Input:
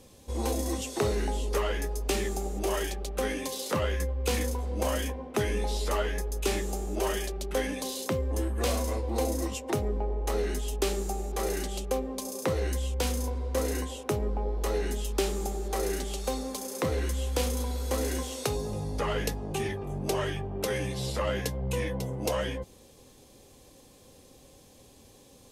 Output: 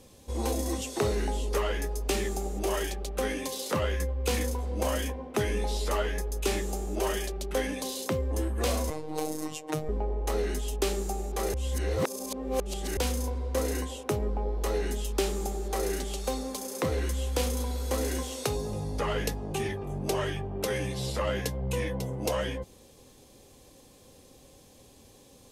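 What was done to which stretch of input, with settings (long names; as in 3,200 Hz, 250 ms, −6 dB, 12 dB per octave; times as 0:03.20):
0:08.90–0:09.89: phases set to zero 154 Hz
0:11.54–0:12.97: reverse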